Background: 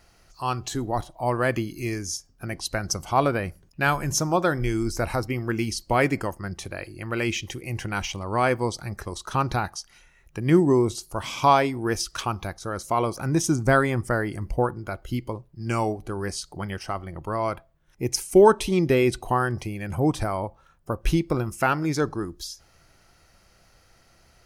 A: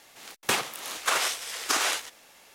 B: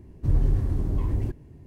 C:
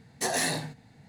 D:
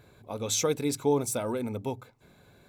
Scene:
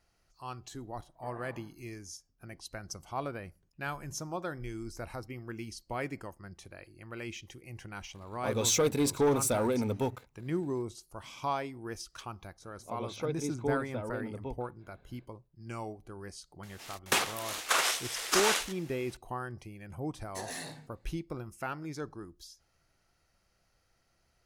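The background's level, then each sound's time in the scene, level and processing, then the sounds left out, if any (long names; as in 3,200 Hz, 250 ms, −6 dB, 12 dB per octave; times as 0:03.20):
background −15 dB
0:01.01: mix in C −10.5 dB + transistor ladder low-pass 1,300 Hz, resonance 65%
0:08.15: mix in D −5 dB + leveller curve on the samples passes 2
0:12.59: mix in D −6.5 dB, fades 0.05 s + high-frequency loss of the air 280 metres
0:16.63: mix in A −2 dB
0:20.14: mix in C −13 dB
not used: B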